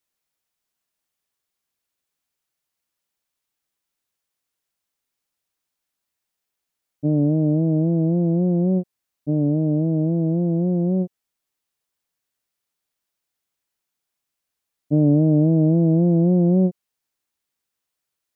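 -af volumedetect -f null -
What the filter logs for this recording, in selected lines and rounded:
mean_volume: -23.1 dB
max_volume: -8.4 dB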